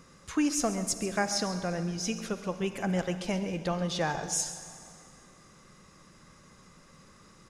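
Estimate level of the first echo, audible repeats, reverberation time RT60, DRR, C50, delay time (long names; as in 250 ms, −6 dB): −14.0 dB, 1, 2.4 s, 9.0 dB, 9.0 dB, 135 ms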